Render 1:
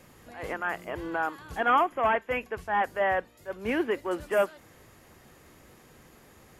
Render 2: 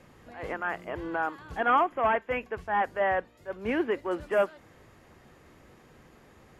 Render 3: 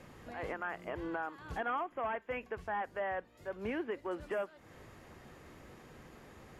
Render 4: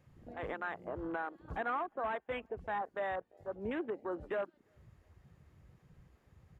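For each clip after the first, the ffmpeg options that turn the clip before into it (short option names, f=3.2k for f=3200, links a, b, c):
-af "aemphasis=mode=reproduction:type=50kf"
-af "acompressor=threshold=-39dB:ratio=3,volume=1dB"
-filter_complex "[0:a]asplit=2[a][b];[b]adelay=345,lowpass=f=2.3k:p=1,volume=-21dB,asplit=2[c][d];[d]adelay=345,lowpass=f=2.3k:p=1,volume=0.53,asplit=2[e][f];[f]adelay=345,lowpass=f=2.3k:p=1,volume=0.53,asplit=2[g][h];[h]adelay=345,lowpass=f=2.3k:p=1,volume=0.53[i];[a][c][e][g][i]amix=inputs=5:normalize=0,afwtdn=0.00794"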